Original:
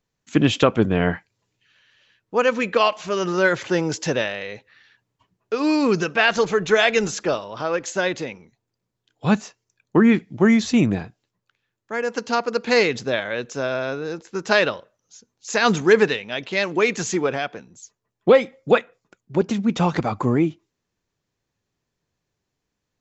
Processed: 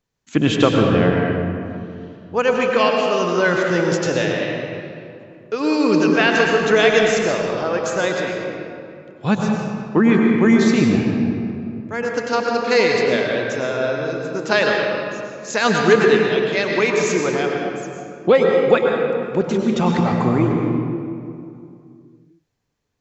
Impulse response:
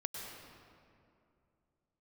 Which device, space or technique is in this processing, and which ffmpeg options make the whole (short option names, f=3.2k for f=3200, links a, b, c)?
stairwell: -filter_complex "[1:a]atrim=start_sample=2205[a];[0:a][a]afir=irnorm=-1:irlink=0,volume=2.5dB"